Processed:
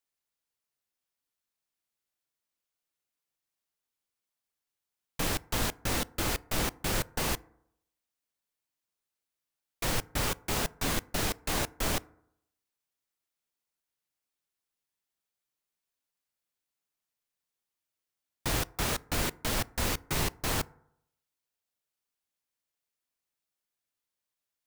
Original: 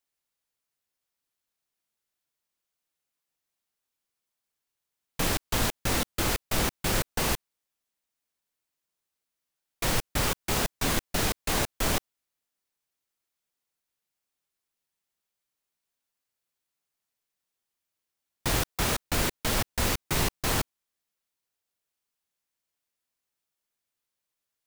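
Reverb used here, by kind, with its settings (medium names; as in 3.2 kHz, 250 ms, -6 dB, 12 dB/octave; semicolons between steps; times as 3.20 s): FDN reverb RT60 0.75 s, low-frequency decay 0.95×, high-frequency decay 0.35×, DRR 19.5 dB; trim -3.5 dB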